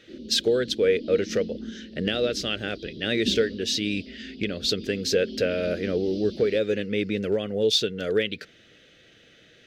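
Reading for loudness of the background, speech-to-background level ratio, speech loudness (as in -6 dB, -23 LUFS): -38.5 LUFS, 13.0 dB, -25.5 LUFS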